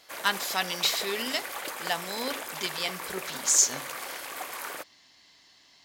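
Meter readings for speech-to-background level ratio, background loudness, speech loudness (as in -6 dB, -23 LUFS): 8.5 dB, -36.0 LUFS, -27.5 LUFS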